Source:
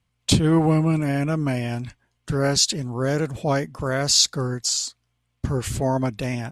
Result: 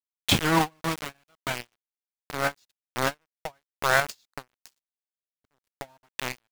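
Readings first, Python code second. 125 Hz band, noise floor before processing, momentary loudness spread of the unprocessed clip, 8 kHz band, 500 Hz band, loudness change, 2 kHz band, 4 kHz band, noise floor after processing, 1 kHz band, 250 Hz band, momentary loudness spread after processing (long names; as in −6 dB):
−13.5 dB, −73 dBFS, 11 LU, −13.5 dB, −8.0 dB, −5.5 dB, +3.5 dB, −8.0 dB, below −85 dBFS, +0.5 dB, −11.0 dB, 21 LU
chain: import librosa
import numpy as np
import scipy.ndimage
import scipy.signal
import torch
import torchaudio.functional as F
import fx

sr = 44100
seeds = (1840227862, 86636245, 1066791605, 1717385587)

y = fx.band_shelf(x, sr, hz=1500.0, db=12.5, octaves=2.6)
y = np.where(np.abs(y) >= 10.0 ** (-15.0 / 20.0), y, 0.0)
y = fx.tremolo_random(y, sr, seeds[0], hz=3.5, depth_pct=55)
y = fx.end_taper(y, sr, db_per_s=520.0)
y = F.gain(torch.from_numpy(y), -3.0).numpy()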